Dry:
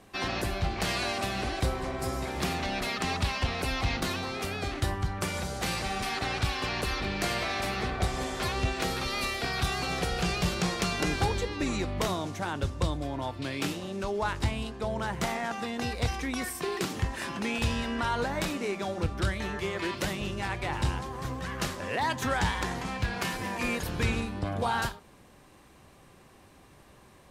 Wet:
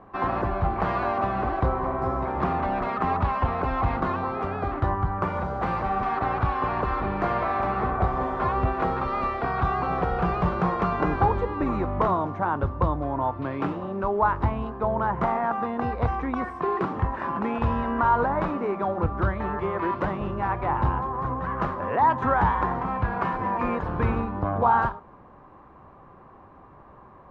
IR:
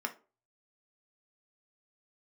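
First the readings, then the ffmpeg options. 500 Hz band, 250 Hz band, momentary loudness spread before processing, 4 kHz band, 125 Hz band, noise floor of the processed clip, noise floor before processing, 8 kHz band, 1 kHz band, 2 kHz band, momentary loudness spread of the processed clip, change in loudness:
+6.0 dB, +4.5 dB, 4 LU, below −15 dB, +4.0 dB, −49 dBFS, −56 dBFS, below −25 dB, +10.0 dB, −1.0 dB, 6 LU, +5.0 dB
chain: -af "lowpass=frequency=1100:width_type=q:width=2.5,volume=4dB"

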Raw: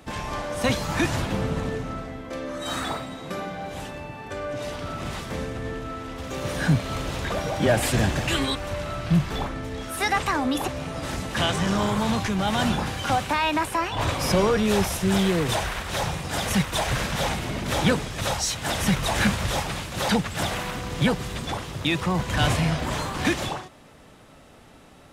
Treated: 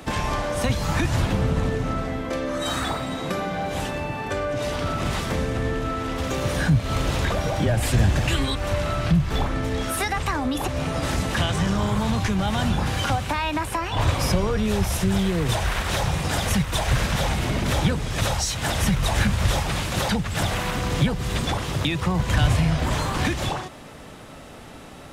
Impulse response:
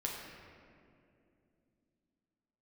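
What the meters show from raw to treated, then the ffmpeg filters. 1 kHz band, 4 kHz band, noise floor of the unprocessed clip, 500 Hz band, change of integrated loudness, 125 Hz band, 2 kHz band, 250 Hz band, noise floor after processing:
0.0 dB, +0.5 dB, −50 dBFS, 0.0 dB, +1.5 dB, +4.5 dB, 0.0 dB, +0.5 dB, −41 dBFS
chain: -filter_complex "[0:a]acrossover=split=120[link_01][link_02];[link_02]acompressor=threshold=-32dB:ratio=6[link_03];[link_01][link_03]amix=inputs=2:normalize=0,volume=8.5dB"

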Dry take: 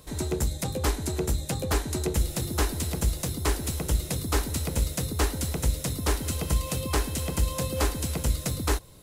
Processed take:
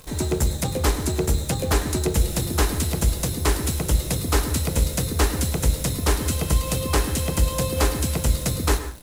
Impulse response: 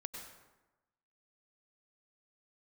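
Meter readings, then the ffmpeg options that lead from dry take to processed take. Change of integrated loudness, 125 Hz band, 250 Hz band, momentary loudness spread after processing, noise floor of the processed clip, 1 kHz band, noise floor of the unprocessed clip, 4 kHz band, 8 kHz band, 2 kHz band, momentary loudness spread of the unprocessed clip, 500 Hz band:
+5.5 dB, +5.5 dB, +5.5 dB, 1 LU, −30 dBFS, +5.0 dB, −39 dBFS, +5.0 dB, +5.0 dB, +5.5 dB, 2 LU, +5.5 dB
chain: -filter_complex "[0:a]acontrast=36,acrusher=bits=8:dc=4:mix=0:aa=0.000001,asplit=2[link_01][link_02];[1:a]atrim=start_sample=2205,afade=type=out:start_time=0.25:duration=0.01,atrim=end_sample=11466[link_03];[link_02][link_03]afir=irnorm=-1:irlink=0,volume=0dB[link_04];[link_01][link_04]amix=inputs=2:normalize=0,volume=-4.5dB"

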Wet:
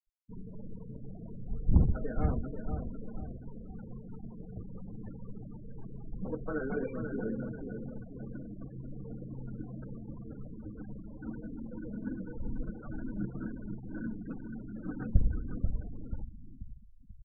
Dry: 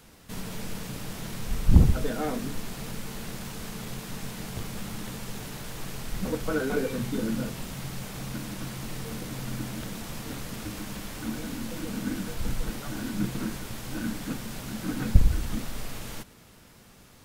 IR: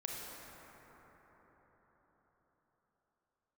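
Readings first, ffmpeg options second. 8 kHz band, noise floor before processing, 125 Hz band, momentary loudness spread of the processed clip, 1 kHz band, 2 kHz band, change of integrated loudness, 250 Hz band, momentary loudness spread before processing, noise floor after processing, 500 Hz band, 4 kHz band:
below −40 dB, −53 dBFS, −6.0 dB, 14 LU, −10.5 dB, −11.5 dB, −6.5 dB, −6.0 dB, 12 LU, −49 dBFS, −6.5 dB, below −40 dB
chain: -filter_complex "[0:a]lowpass=2800,asplit=2[link_01][link_02];[link_02]aecho=0:1:487|974|1461|1948|2435:0.473|0.213|0.0958|0.0431|0.0194[link_03];[link_01][link_03]amix=inputs=2:normalize=0,afftfilt=real='re*gte(hypot(re,im),0.0282)':imag='im*gte(hypot(re,im),0.0282)':win_size=1024:overlap=0.75,volume=-7dB"

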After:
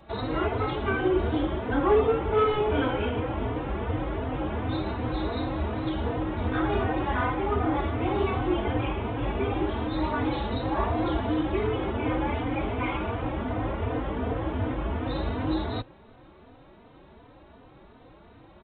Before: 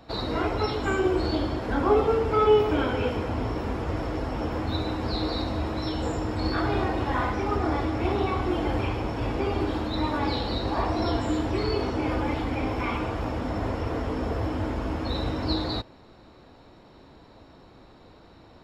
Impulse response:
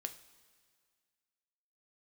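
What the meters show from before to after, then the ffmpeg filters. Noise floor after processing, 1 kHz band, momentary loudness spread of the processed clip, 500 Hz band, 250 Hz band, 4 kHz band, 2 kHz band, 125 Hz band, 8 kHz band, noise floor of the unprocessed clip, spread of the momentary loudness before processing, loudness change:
−53 dBFS, −0.5 dB, 6 LU, −1.0 dB, −0.5 dB, −5.5 dB, 0.0 dB, −0.5 dB, below −30 dB, −52 dBFS, 7 LU, −1.0 dB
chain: -filter_complex "[0:a]volume=16.5dB,asoftclip=hard,volume=-16.5dB,aresample=8000,aresample=44100,asplit=2[link_01][link_02];[link_02]adelay=3.2,afreqshift=2.7[link_03];[link_01][link_03]amix=inputs=2:normalize=1,volume=2.5dB"

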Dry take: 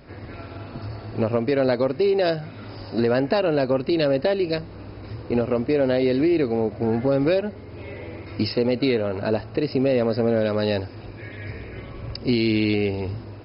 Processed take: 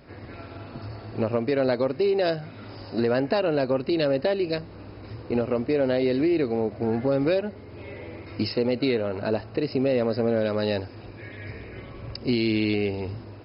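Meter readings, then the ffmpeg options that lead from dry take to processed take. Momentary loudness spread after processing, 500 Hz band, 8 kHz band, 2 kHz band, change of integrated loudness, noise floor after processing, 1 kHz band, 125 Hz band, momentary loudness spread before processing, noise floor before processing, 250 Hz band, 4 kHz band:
17 LU, −2.5 dB, can't be measured, −2.5 dB, −2.5 dB, −43 dBFS, −2.5 dB, −4.0 dB, 17 LU, −39 dBFS, −3.0 dB, −2.5 dB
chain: -af "lowshelf=frequency=73:gain=-5,volume=-2.5dB"

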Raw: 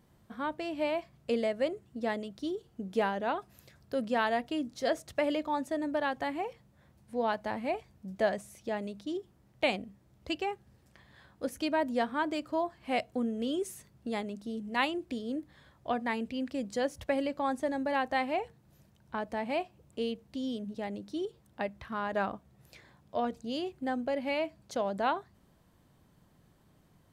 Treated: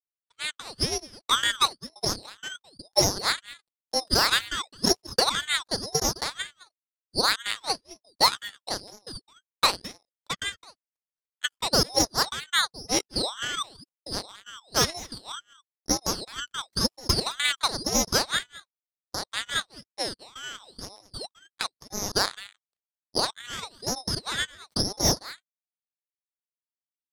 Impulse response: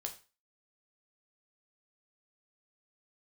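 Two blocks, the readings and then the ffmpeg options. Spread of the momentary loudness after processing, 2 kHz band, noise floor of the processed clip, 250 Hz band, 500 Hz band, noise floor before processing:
17 LU, +6.5 dB, below −85 dBFS, −2.0 dB, −1.5 dB, −65 dBFS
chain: -filter_complex "[0:a]afftfilt=real='real(if(lt(b,920),b+92*(1-2*mod(floor(b/92),2)),b),0)':imag='imag(if(lt(b,920),b+92*(1-2*mod(floor(b/92),2)),b),0)':win_size=2048:overlap=0.75,bandreject=frequency=213.2:width_type=h:width=4,bandreject=frequency=426.4:width_type=h:width=4,bandreject=frequency=639.6:width_type=h:width=4,bandreject=frequency=852.8:width_type=h:width=4,bandreject=frequency=1066:width_type=h:width=4,acrossover=split=6000[link_01][link_02];[link_02]acompressor=threshold=-57dB:ratio=4:attack=1:release=60[link_03];[link_01][link_03]amix=inputs=2:normalize=0,agate=range=-33dB:threshold=-58dB:ratio=3:detection=peak,highpass=frequency=150:poles=1,equalizer=frequency=880:width=6.7:gain=12,acrossover=split=210|1300[link_04][link_05][link_06];[link_06]dynaudnorm=framelen=160:gausssize=3:maxgain=6dB[link_07];[link_04][link_05][link_07]amix=inputs=3:normalize=0,aeval=exprs='0.316*(cos(1*acos(clip(val(0)/0.316,-1,1)))-cos(1*PI/2))+0.0251*(cos(5*acos(clip(val(0)/0.316,-1,1)))-cos(5*PI/2))+0.0631*(cos(7*acos(clip(val(0)/0.316,-1,1)))-cos(7*PI/2))':channel_layout=same,asuperstop=centerf=4800:order=20:qfactor=4.8,asplit=2[link_08][link_09];[link_09]aecho=0:1:212:0.119[link_10];[link_08][link_10]amix=inputs=2:normalize=0,aeval=exprs='val(0)*sin(2*PI*1900*n/s+1900*0.6/1*sin(2*PI*1*n/s))':channel_layout=same,volume=4.5dB"

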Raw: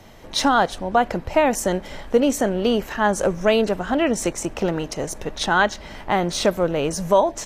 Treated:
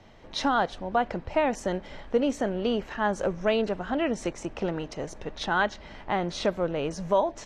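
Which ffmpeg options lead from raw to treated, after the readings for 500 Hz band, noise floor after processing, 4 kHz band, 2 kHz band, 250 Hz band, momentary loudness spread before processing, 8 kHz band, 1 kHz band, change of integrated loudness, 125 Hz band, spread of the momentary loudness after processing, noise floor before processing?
−7.0 dB, −47 dBFS, −8.5 dB, −7.0 dB, −7.0 dB, 8 LU, −15.0 dB, −7.0 dB, −7.0 dB, −7.0 dB, 8 LU, −40 dBFS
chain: -af "lowpass=4700,volume=-7dB"

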